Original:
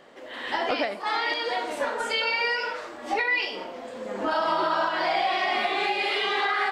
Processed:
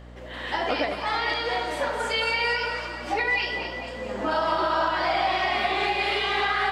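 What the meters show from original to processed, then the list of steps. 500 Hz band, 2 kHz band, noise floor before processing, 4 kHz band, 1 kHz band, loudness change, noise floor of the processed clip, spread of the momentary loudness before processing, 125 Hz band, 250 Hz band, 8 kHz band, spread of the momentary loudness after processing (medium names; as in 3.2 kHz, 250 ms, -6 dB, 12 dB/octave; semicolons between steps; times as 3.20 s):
+1.0 dB, +1.0 dB, -40 dBFS, +0.5 dB, +1.0 dB, +0.5 dB, -37 dBFS, 11 LU, +12.5 dB, +1.0 dB, +1.0 dB, 7 LU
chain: two-band feedback delay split 720 Hz, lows 84 ms, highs 222 ms, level -8 dB; hum 60 Hz, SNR 18 dB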